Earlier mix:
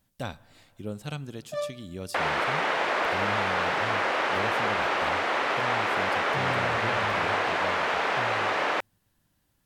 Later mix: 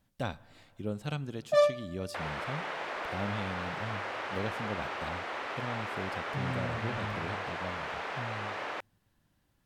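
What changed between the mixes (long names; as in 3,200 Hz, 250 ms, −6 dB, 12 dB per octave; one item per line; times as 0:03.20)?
speech: add high-shelf EQ 5,600 Hz −9 dB
first sound +8.5 dB
second sound −11.0 dB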